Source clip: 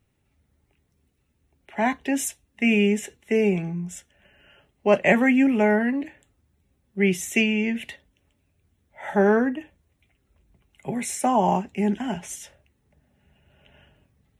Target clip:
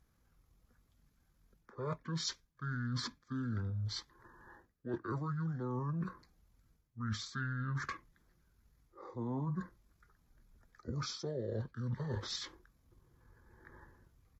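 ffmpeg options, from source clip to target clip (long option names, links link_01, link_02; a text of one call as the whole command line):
ffmpeg -i in.wav -af "areverse,acompressor=threshold=-33dB:ratio=20,areverse,asetrate=26222,aresample=44100,atempo=1.68179,volume=-1.5dB" out.wav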